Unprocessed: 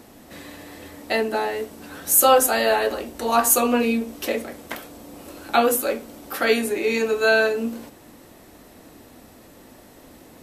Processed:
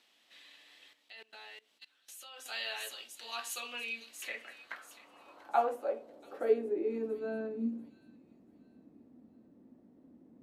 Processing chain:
band-pass filter sweep 3,200 Hz → 230 Hz, 0:03.72–0:07.37
delay with a high-pass on its return 688 ms, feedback 33%, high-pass 4,500 Hz, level −6 dB
0:00.93–0:02.46: output level in coarse steps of 22 dB
level −6.5 dB

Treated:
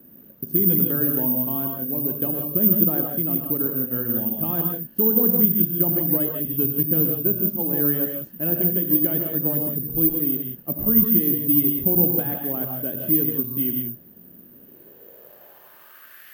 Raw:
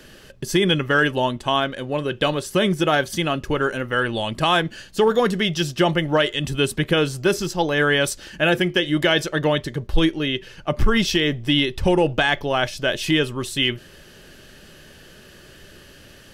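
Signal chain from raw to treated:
in parallel at −5 dB: bit-depth reduction 6 bits, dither triangular
on the sum: reverb whose tail is shaped and stops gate 200 ms rising, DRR 2.5 dB
band-pass filter sweep 230 Hz → 1,800 Hz, 0:14.46–0:16.28
bad sample-rate conversion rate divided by 3×, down none, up zero stuff
level −3 dB

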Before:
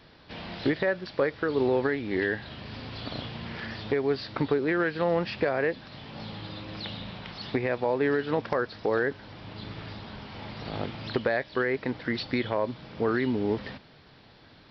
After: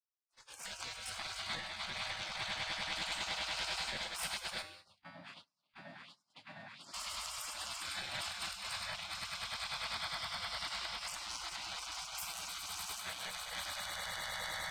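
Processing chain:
stylus tracing distortion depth 0.093 ms
flat-topped bell 950 Hz −9.5 dB
echo that builds up and dies away 101 ms, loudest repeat 8, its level −9.5 dB
noise reduction from a noise print of the clip's start 14 dB
compressor whose output falls as the input rises −29 dBFS, ratio −1
0:04.62–0:06.94: LFO wah 1.4 Hz 410–3,100 Hz, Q 5.1
tuned comb filter 87 Hz, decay 0.7 s, harmonics odd, mix 80%
noise gate −56 dBFS, range −28 dB
low-shelf EQ 190 Hz −10 dB
gate on every frequency bin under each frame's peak −25 dB weak
multiband upward and downward compressor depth 40%
level +16 dB

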